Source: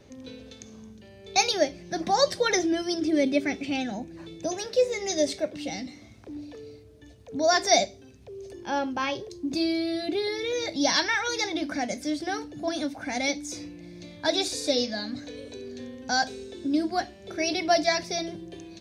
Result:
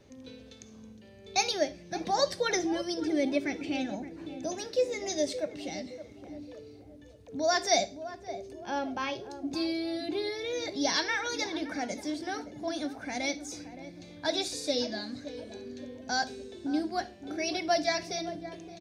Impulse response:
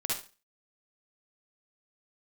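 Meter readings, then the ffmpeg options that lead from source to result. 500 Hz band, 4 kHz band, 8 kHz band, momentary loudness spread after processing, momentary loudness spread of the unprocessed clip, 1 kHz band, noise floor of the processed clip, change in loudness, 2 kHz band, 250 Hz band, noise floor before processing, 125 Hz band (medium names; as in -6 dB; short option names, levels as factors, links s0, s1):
-4.5 dB, -5.0 dB, -5.0 dB, 17 LU, 19 LU, -4.5 dB, -51 dBFS, -5.0 dB, -5.0 dB, -4.5 dB, -50 dBFS, -4.5 dB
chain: -filter_complex "[0:a]asplit=2[s0][s1];[s1]adelay=569,lowpass=f=970:p=1,volume=0.282,asplit=2[s2][s3];[s3]adelay=569,lowpass=f=970:p=1,volume=0.49,asplit=2[s4][s5];[s5]adelay=569,lowpass=f=970:p=1,volume=0.49,asplit=2[s6][s7];[s7]adelay=569,lowpass=f=970:p=1,volume=0.49,asplit=2[s8][s9];[s9]adelay=569,lowpass=f=970:p=1,volume=0.49[s10];[s0][s2][s4][s6][s8][s10]amix=inputs=6:normalize=0,asplit=2[s11][s12];[1:a]atrim=start_sample=2205[s13];[s12][s13]afir=irnorm=-1:irlink=0,volume=0.075[s14];[s11][s14]amix=inputs=2:normalize=0,volume=0.531"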